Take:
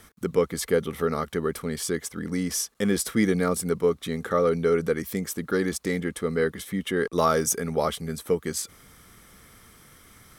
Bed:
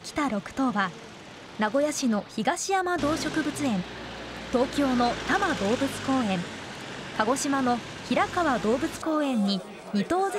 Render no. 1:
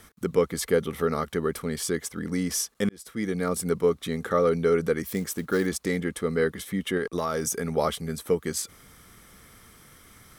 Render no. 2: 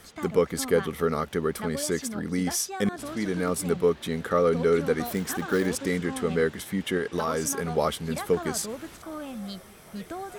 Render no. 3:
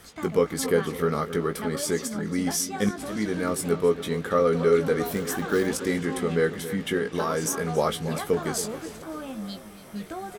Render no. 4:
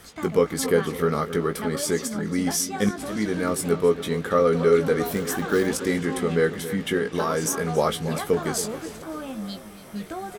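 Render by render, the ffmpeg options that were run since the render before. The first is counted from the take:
ffmpeg -i in.wav -filter_complex "[0:a]asettb=1/sr,asplit=3[link_01][link_02][link_03];[link_01]atrim=end=5.034[link_04];[link_02]atrim=start=5.03:end=5.67,asetpts=PTS-STARTPTS,afade=type=in:duration=0.004:curve=qsin,afade=type=out:start_time=0.636:duration=0.004:curve=qsin,acrusher=bits=6:mode=log:mix=0:aa=0.000001[link_05];[link_03]atrim=start=5.666[link_06];[link_04][link_05]acrossfade=duration=0.004:curve1=hsin:curve2=qsin[link_07];[link_07][link_06]acrossfade=duration=0.004:curve1=qsin:curve2=hsin,asettb=1/sr,asplit=3[link_08][link_09][link_10];[link_08]atrim=end=6.974[link_11];[link_09]atrim=start=6.97:end=7.72,asetpts=PTS-STARTPTS,afade=type=in:duration=0.004:curve=qsin,afade=type=out:start_time=0.746:duration=0.004:curve=qsin,acompressor=threshold=-23dB:ratio=6:attack=3.2:release=140:knee=1:detection=peak[link_12];[link_10]atrim=start=7.716[link_13];[link_11][link_12]acrossfade=duration=0.004:curve1=hsin:curve2=qsin[link_14];[link_14][link_13]acrossfade=duration=0.004:curve1=qsin:curve2=hsin,asplit=2[link_15][link_16];[link_15]atrim=end=2.89,asetpts=PTS-STARTPTS,afade=type=out:start_time=2.886:duration=0.004:curve=hsin[link_17];[link_16]atrim=start=2.89,asetpts=PTS-STARTPTS,afade=type=in:duration=0.8[link_18];[link_17][link_18]concat=n=2:v=0:a=1" out.wav
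ffmpeg -i in.wav -i bed.wav -filter_complex "[1:a]volume=-11.5dB[link_01];[0:a][link_01]amix=inputs=2:normalize=0" out.wav
ffmpeg -i in.wav -filter_complex "[0:a]asplit=2[link_01][link_02];[link_02]adelay=19,volume=-7.5dB[link_03];[link_01][link_03]amix=inputs=2:normalize=0,asplit=2[link_04][link_05];[link_05]adelay=277,lowpass=frequency=3900:poles=1,volume=-12.5dB,asplit=2[link_06][link_07];[link_07]adelay=277,lowpass=frequency=3900:poles=1,volume=0.53,asplit=2[link_08][link_09];[link_09]adelay=277,lowpass=frequency=3900:poles=1,volume=0.53,asplit=2[link_10][link_11];[link_11]adelay=277,lowpass=frequency=3900:poles=1,volume=0.53,asplit=2[link_12][link_13];[link_13]adelay=277,lowpass=frequency=3900:poles=1,volume=0.53[link_14];[link_04][link_06][link_08][link_10][link_12][link_14]amix=inputs=6:normalize=0" out.wav
ffmpeg -i in.wav -af "volume=2dB" out.wav

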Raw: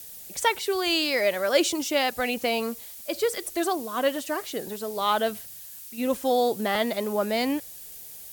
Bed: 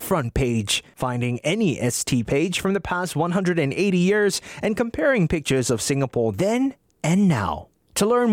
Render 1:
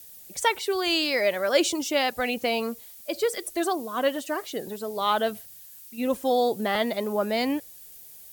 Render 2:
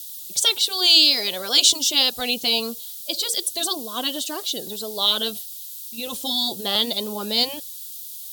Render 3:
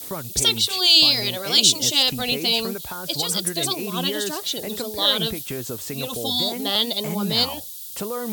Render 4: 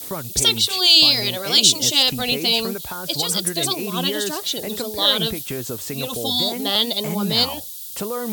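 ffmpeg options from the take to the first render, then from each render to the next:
ffmpeg -i in.wav -af "afftdn=noise_reduction=6:noise_floor=-43" out.wav
ffmpeg -i in.wav -af "afftfilt=real='re*lt(hypot(re,im),0.447)':imag='im*lt(hypot(re,im),0.447)':win_size=1024:overlap=0.75,highshelf=frequency=2700:width_type=q:width=3:gain=10" out.wav
ffmpeg -i in.wav -i bed.wav -filter_complex "[1:a]volume=-10.5dB[link_01];[0:a][link_01]amix=inputs=2:normalize=0" out.wav
ffmpeg -i in.wav -af "volume=2dB,alimiter=limit=-1dB:level=0:latency=1" out.wav

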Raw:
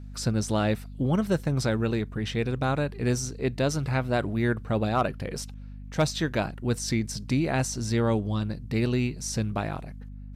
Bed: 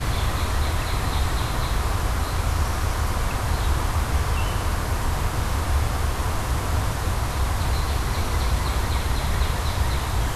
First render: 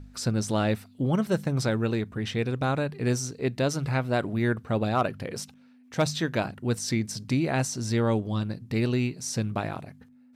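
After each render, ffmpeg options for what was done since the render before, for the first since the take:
ffmpeg -i in.wav -af "bandreject=frequency=50:width_type=h:width=4,bandreject=frequency=100:width_type=h:width=4,bandreject=frequency=150:width_type=h:width=4,bandreject=frequency=200:width_type=h:width=4" out.wav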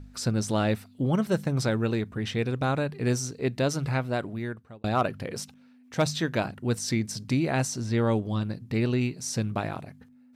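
ffmpeg -i in.wav -filter_complex "[0:a]asettb=1/sr,asplit=3[link_01][link_02][link_03];[link_01]atrim=end=7.804[link_04];[link_02]atrim=start=7.8:end=9.01,asetpts=PTS-STARTPTS,afade=type=in:duration=0.004:curve=qsin,afade=type=out:start_time=1.206:duration=0.004:curve=qsin,acrossover=split=3800[link_05][link_06];[link_06]acompressor=threshold=-48dB:ratio=4:attack=1:release=60[link_07];[link_05][link_07]amix=inputs=2:normalize=0[link_08];[link_03]atrim=start=9.006[link_09];[link_04][link_08]acrossfade=duration=0.004:curve1=hsin:curve2=qsin[link_10];[link_10][link_09]acrossfade=duration=0.004:curve1=qsin:curve2=hsin,asplit=2[link_11][link_12];[link_11]atrim=end=4.84,asetpts=PTS-STARTPTS,afade=type=out:start_time=3.88:duration=0.96[link_13];[link_12]atrim=start=4.84,asetpts=PTS-STARTPTS,afade=type=in:duration=0.004:curve=hsin[link_14];[link_13][link_14]concat=n=2:v=0:a=1" out.wav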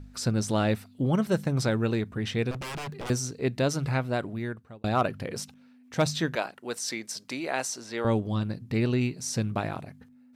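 ffmpeg -i in.wav -filter_complex "[0:a]asettb=1/sr,asplit=3[link_01][link_02][link_03];[link_01]atrim=end=2.514[link_04];[link_02]atrim=start=2.51:end=3.1,asetpts=PTS-STARTPTS,afade=type=in:duration=0.004:curve=qsin,afade=type=out:start_time=0.586:duration=0.004:curve=qsin,aeval=exprs='0.0282*(abs(mod(val(0)/0.0282+3,4)-2)-1)':channel_layout=same[link_05];[link_03]atrim=start=3.096[link_06];[link_04][link_05]acrossfade=duration=0.004:curve1=hsin:curve2=qsin[link_07];[link_07][link_06]acrossfade=duration=0.004:curve1=qsin:curve2=hsin,asettb=1/sr,asplit=3[link_08][link_09][link_10];[link_08]atrim=end=6.354[link_11];[link_09]atrim=start=6.35:end=8.05,asetpts=PTS-STARTPTS,afade=type=in:duration=0.004:curve=qsin,afade=type=out:start_time=1.696:duration=0.004:curve=qsin,highpass=470[link_12];[link_10]atrim=start=8.046[link_13];[link_11][link_12]acrossfade=duration=0.004:curve1=hsin:curve2=qsin[link_14];[link_14][link_13]acrossfade=duration=0.004:curve1=qsin:curve2=hsin" out.wav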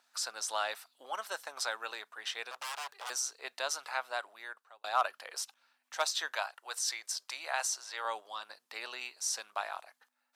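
ffmpeg -i in.wav -af "highpass=frequency=810:width=0.5412,highpass=frequency=810:width=1.3066,equalizer=frequency=2200:width_type=o:width=0.58:gain=-5.5" out.wav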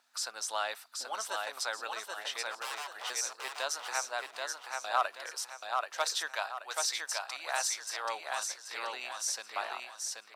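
ffmpeg -i in.wav -af "aecho=1:1:781|1562|2343|3124|3905:0.668|0.241|0.0866|0.0312|0.0112" out.wav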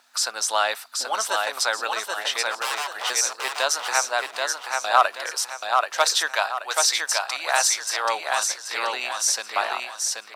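ffmpeg -i in.wav -af "volume=12dB" out.wav

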